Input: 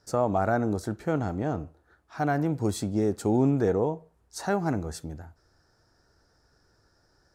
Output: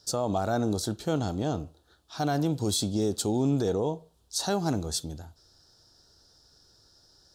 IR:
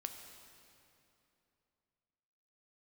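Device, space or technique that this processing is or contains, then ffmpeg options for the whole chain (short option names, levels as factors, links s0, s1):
over-bright horn tweeter: -af "highshelf=f=2700:t=q:w=3:g=9,alimiter=limit=0.133:level=0:latency=1:release=35"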